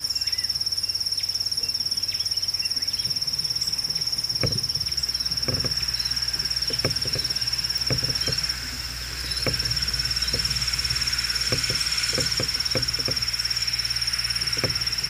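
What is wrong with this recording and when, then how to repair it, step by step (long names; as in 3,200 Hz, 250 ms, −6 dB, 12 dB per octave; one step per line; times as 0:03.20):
0:07.78: click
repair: click removal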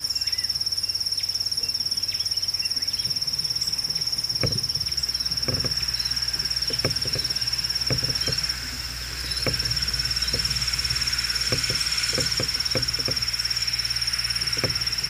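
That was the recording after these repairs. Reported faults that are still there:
none of them is left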